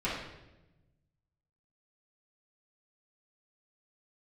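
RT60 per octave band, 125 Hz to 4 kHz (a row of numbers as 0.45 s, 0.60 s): 1.8 s, 1.4 s, 1.1 s, 0.85 s, 0.85 s, 0.80 s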